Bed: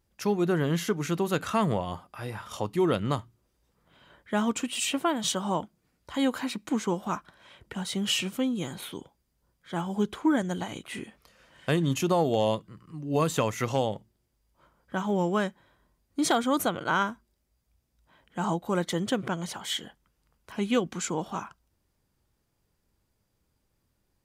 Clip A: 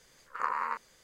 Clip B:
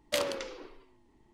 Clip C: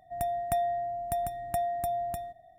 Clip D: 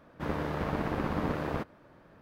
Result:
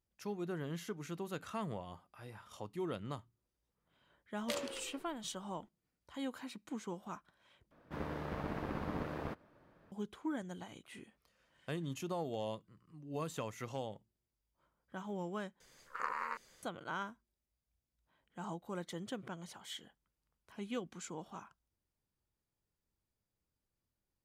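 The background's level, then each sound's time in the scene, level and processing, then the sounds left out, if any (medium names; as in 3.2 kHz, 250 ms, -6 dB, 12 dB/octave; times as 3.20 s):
bed -15 dB
4.36 s: add B -9.5 dB
7.71 s: replace with D -8.5 dB
15.60 s: replace with A -2.5 dB + dynamic bell 1 kHz, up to -6 dB, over -42 dBFS, Q 1.3
not used: C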